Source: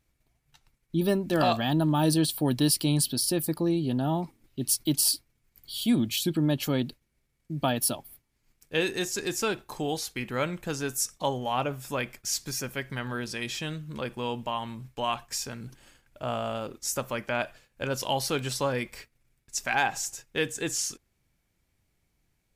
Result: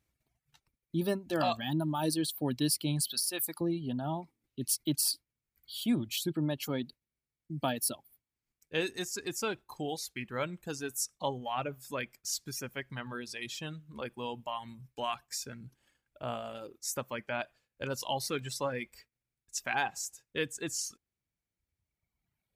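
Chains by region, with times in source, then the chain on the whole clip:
3.07–3.61 s: tilt shelf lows -9.5 dB, about 900 Hz + compression 10:1, threshold -21 dBFS
whole clip: high-pass 51 Hz; reverb removal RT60 1.9 s; trim -5 dB

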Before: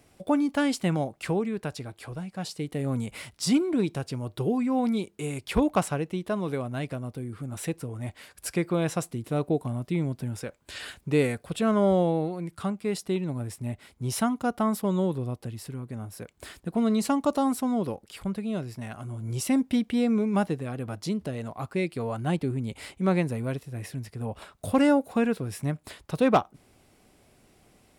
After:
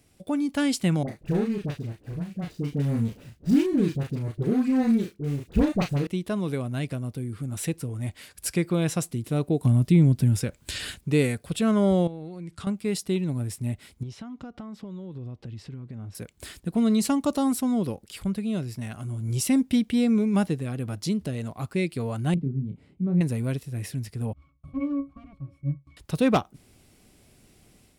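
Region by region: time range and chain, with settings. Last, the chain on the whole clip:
1.03–6.07 s: median filter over 41 samples + doubling 35 ms -5 dB + phase dispersion highs, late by 52 ms, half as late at 1 kHz
9.63–10.96 s: bass shelf 320 Hz +9.5 dB + tape noise reduction on one side only encoder only
12.07–12.67 s: low-pass 7.8 kHz + compression, threshold -36 dBFS
14.03–16.15 s: compression 8:1, threshold -37 dBFS + distance through air 160 m
22.34–23.21 s: band-pass filter 170 Hz, Q 1.6 + doubling 29 ms -6 dB
24.33–25.97 s: comb filter that takes the minimum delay 0.92 ms + pitch-class resonator C#, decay 0.19 s
whole clip: level rider gain up to 5 dB; peaking EQ 860 Hz -8.5 dB 2.5 oct

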